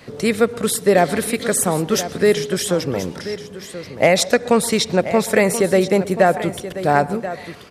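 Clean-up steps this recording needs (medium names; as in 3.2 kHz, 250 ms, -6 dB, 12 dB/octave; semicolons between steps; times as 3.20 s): inverse comb 1032 ms -12.5 dB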